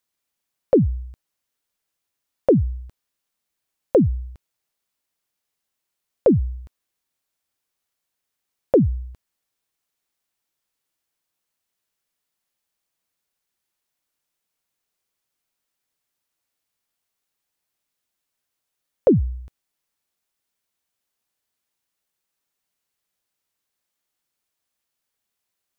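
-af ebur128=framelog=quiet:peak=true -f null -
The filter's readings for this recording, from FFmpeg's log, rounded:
Integrated loudness:
  I:         -20.9 LUFS
  Threshold: -32.5 LUFS
Loudness range:
  LRA:         3.0 LU
  Threshold: -47.4 LUFS
  LRA low:   -28.3 LUFS
  LRA high:  -25.3 LUFS
True peak:
  Peak:       -7.1 dBFS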